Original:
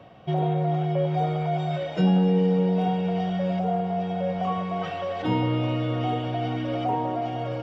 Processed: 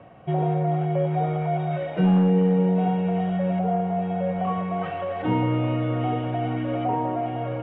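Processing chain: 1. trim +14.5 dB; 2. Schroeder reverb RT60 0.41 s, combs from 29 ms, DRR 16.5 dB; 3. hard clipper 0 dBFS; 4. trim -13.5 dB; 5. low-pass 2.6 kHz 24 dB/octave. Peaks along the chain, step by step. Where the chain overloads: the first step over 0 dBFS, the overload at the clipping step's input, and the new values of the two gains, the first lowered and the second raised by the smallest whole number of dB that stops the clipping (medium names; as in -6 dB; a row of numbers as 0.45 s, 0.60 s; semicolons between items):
+2.5 dBFS, +3.0 dBFS, 0.0 dBFS, -13.5 dBFS, -13.0 dBFS; step 1, 3.0 dB; step 1 +11.5 dB, step 4 -10.5 dB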